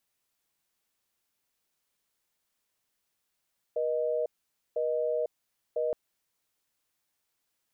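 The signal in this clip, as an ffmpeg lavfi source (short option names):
-f lavfi -i "aevalsrc='0.0355*(sin(2*PI*480*t)+sin(2*PI*620*t))*clip(min(mod(t,1),0.5-mod(t,1))/0.005,0,1)':d=2.17:s=44100"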